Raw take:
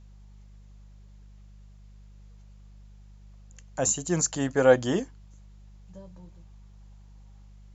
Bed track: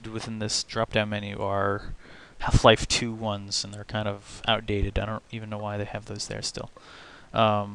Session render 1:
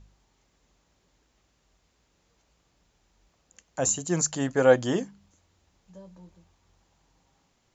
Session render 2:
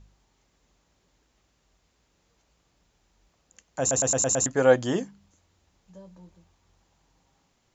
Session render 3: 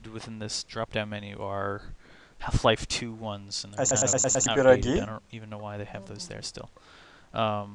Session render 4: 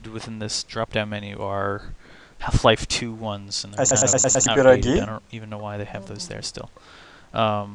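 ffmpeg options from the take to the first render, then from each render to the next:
-af "bandreject=f=50:t=h:w=4,bandreject=f=100:t=h:w=4,bandreject=f=150:t=h:w=4,bandreject=f=200:t=h:w=4"
-filter_complex "[0:a]asplit=7[a][b][c][d][e][f][g];[a]atrim=end=3.912[h];[b]atrim=start=3.798:end=3.912[i];[c]atrim=start=3.798:end=3.912[j];[d]atrim=start=3.798:end=3.912[k];[e]atrim=start=3.798:end=3.912[l];[f]atrim=start=3.798:end=3.912[m];[g]atrim=start=4.458[n];[h][i]acrossfade=d=0.004:c1=hsin:c2=hsin[o];[o][j]acrossfade=d=0.004:c1=hsin:c2=hsin[p];[p][k]acrossfade=d=0.004:c1=hsin:c2=hsin[q];[q][l]acrossfade=d=0.004:c1=hsin:c2=hsin[r];[r][m]acrossfade=d=0.004:c1=hsin:c2=hsin[s];[s][n]acrossfade=d=0.004:c1=hsin:c2=hsin"
-filter_complex "[1:a]volume=-5.5dB[a];[0:a][a]amix=inputs=2:normalize=0"
-af "volume=6dB,alimiter=limit=-2dB:level=0:latency=1"

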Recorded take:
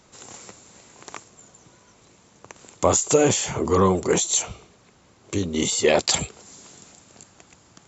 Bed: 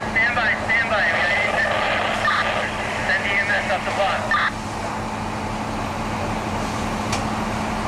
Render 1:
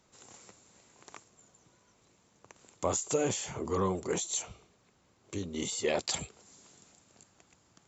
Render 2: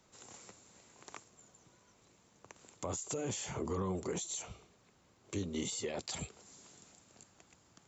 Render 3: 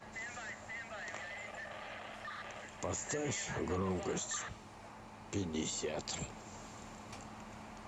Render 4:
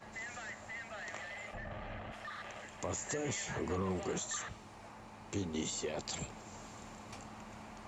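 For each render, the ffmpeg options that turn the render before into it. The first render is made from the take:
-af "volume=-12dB"
-filter_complex "[0:a]alimiter=level_in=0.5dB:limit=-24dB:level=0:latency=1:release=48,volume=-0.5dB,acrossover=split=270[a][b];[b]acompressor=threshold=-37dB:ratio=6[c];[a][c]amix=inputs=2:normalize=0"
-filter_complex "[1:a]volume=-26.5dB[a];[0:a][a]amix=inputs=2:normalize=0"
-filter_complex "[0:a]asplit=3[a][b][c];[a]afade=t=out:st=1.53:d=0.02[d];[b]aemphasis=mode=reproduction:type=riaa,afade=t=in:st=1.53:d=0.02,afade=t=out:st=2.11:d=0.02[e];[c]afade=t=in:st=2.11:d=0.02[f];[d][e][f]amix=inputs=3:normalize=0"

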